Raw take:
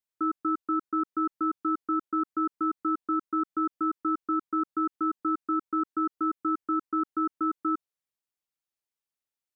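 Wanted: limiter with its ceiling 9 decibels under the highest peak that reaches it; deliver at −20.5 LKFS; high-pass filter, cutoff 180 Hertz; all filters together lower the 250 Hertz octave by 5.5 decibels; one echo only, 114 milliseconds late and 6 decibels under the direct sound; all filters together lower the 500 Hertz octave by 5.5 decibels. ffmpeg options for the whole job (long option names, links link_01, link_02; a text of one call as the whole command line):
ffmpeg -i in.wav -af "highpass=180,equalizer=frequency=250:width_type=o:gain=-4.5,equalizer=frequency=500:width_type=o:gain=-5.5,alimiter=level_in=7.5dB:limit=-24dB:level=0:latency=1,volume=-7.5dB,aecho=1:1:114:0.501,volume=19dB" out.wav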